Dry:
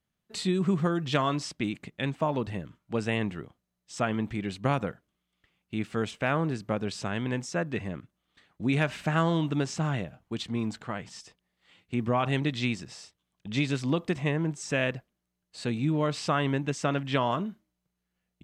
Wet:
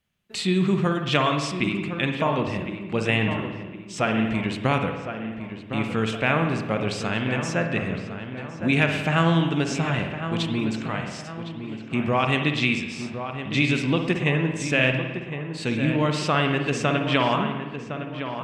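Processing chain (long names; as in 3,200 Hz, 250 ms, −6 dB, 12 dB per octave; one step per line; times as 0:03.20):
parametric band 2,600 Hz +7 dB 0.82 octaves
hum removal 317 Hz, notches 36
on a send: feedback echo with a low-pass in the loop 1,060 ms, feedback 45%, low-pass 2,300 Hz, level −9 dB
on the sum: spring reverb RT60 1.2 s, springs 54 ms, chirp 80 ms, DRR 5 dB
level +3.5 dB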